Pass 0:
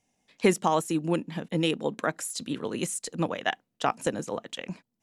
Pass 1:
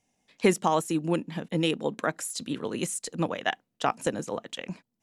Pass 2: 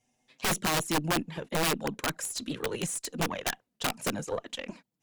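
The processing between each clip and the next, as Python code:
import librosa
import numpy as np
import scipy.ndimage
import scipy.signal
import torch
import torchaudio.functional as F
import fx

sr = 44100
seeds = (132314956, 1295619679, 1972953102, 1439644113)

y1 = x
y2 = fx.env_flanger(y1, sr, rest_ms=8.1, full_db=-20.5)
y2 = fx.cheby_harmonics(y2, sr, harmonics=(5, 8), levels_db=(-23, -22), full_scale_db=-10.0)
y2 = (np.mod(10.0 ** (21.0 / 20.0) * y2 + 1.0, 2.0) - 1.0) / 10.0 ** (21.0 / 20.0)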